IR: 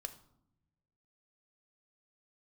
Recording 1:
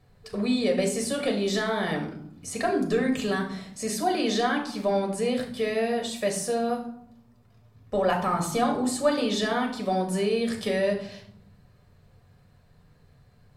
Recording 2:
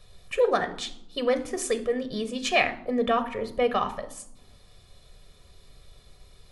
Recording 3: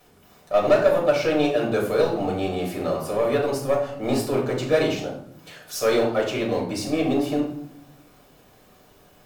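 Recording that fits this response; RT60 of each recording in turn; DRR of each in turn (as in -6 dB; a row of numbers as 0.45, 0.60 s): 2; 0.75, 0.80, 0.75 s; 1.0, 8.0, -3.0 dB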